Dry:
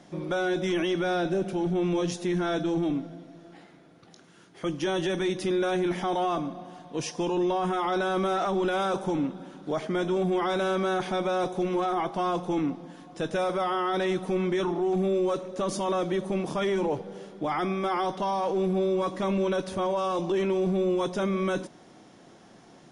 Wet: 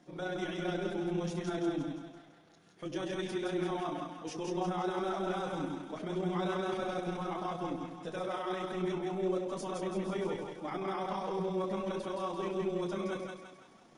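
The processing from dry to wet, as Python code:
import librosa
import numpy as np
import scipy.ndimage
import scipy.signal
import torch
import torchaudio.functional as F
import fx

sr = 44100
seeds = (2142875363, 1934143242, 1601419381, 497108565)

y = fx.chorus_voices(x, sr, voices=4, hz=0.35, base_ms=30, depth_ms=3.4, mix_pct=40)
y = fx.echo_split(y, sr, split_hz=710.0, low_ms=156, high_ms=277, feedback_pct=52, wet_db=-3)
y = fx.stretch_grains(y, sr, factor=0.61, grain_ms=66.0)
y = y * 10.0 ** (-6.5 / 20.0)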